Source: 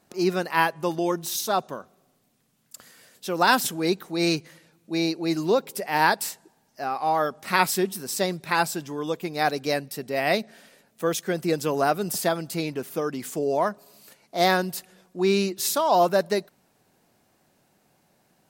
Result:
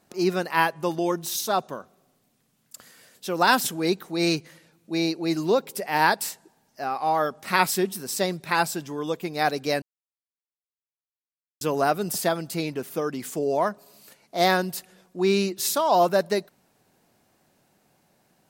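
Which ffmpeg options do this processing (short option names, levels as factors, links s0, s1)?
-filter_complex "[0:a]asplit=3[s0][s1][s2];[s0]atrim=end=9.82,asetpts=PTS-STARTPTS,afade=t=out:st=9.816:d=0.004:c=hsin[s3];[s1]atrim=start=9.82:end=11.61,asetpts=PTS-STARTPTS,volume=0[s4];[s2]atrim=start=11.61,asetpts=PTS-STARTPTS,afade=t=in:d=0.004:c=hsin[s5];[s3][s4][s5]concat=n=3:v=0:a=1"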